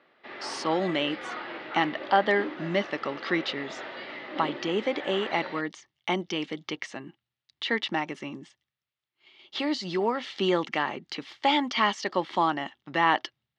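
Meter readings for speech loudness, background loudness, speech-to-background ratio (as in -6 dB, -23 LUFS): -28.5 LUFS, -38.0 LUFS, 9.5 dB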